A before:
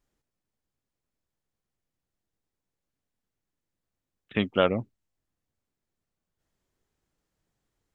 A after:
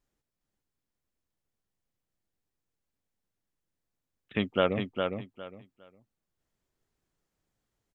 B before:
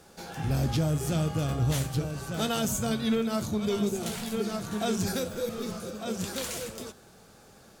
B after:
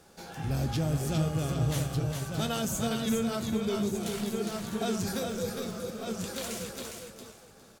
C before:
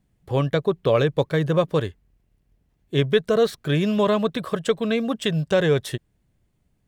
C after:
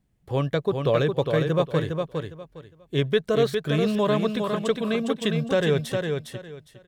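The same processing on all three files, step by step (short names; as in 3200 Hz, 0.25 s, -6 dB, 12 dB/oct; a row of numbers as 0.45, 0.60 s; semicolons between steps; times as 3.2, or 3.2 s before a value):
feedback echo 0.408 s, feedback 22%, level -5 dB; gain -3 dB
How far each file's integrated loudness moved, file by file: -3.5, -1.5, -2.5 LU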